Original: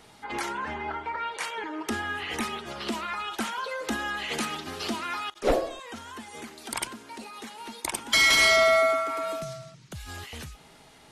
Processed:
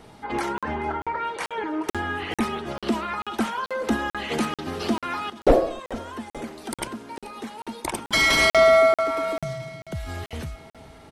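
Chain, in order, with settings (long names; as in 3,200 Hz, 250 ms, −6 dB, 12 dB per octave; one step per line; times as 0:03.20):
tilt shelving filter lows +5.5 dB, about 1,200 Hz
notch filter 6,900 Hz, Q 20
repeating echo 432 ms, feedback 59%, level −20.5 dB
regular buffer underruns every 0.44 s, samples 2,048, zero, from 0:00.58
level +3.5 dB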